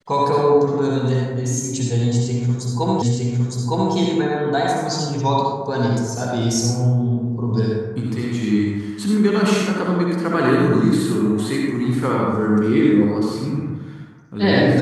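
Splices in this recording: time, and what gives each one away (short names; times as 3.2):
3.02 repeat of the last 0.91 s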